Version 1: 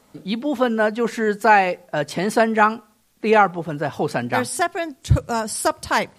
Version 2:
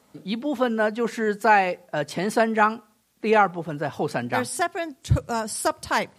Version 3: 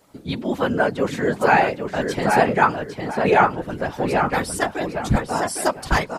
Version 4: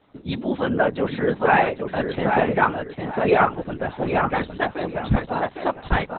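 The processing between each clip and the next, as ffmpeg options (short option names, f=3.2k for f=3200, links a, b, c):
-af "highpass=62,volume=-3.5dB"
-filter_complex "[0:a]asplit=2[a][b];[b]adelay=808,lowpass=f=3.5k:p=1,volume=-4.5dB,asplit=2[c][d];[d]adelay=808,lowpass=f=3.5k:p=1,volume=0.29,asplit=2[e][f];[f]adelay=808,lowpass=f=3.5k:p=1,volume=0.29,asplit=2[g][h];[h]adelay=808,lowpass=f=3.5k:p=1,volume=0.29[i];[a][c][e][g][i]amix=inputs=5:normalize=0,afftfilt=real='hypot(re,im)*cos(2*PI*random(0))':imag='hypot(re,im)*sin(2*PI*random(1))':win_size=512:overlap=0.75,volume=8dB"
-ar 48000 -c:a libopus -b:a 8k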